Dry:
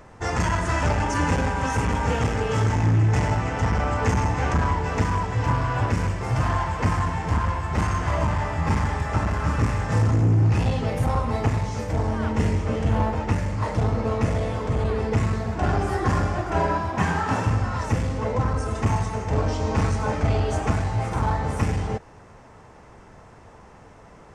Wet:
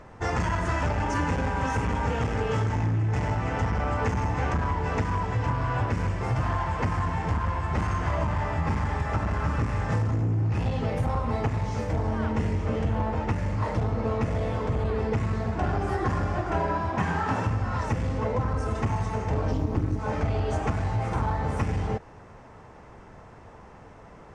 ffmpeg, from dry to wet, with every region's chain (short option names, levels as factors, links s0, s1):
-filter_complex "[0:a]asettb=1/sr,asplit=3[s0][s1][s2];[s0]atrim=end=19.514[s3];[s1]atrim=start=19.51:end=19.99,asetpts=PTS-STARTPTS,afade=t=in:d=0.004:c=qsin,afade=t=out:st=0.476:d=0.004:c=qsin,lowshelf=f=380:g=11.5,tremolo=f=210:d=0.974,acrusher=bits=7:mix=0:aa=0.5[s4];[s2]atrim=start=19.986[s5];[s3][s4]acrossfade=d=0.004:c1=hsin:c2=qsin[s6];[s6][s5]acrossfade=d=0.004:c1=qsin:c2=hsin,lowpass=f=3900:p=1,acompressor=threshold=0.0794:ratio=6"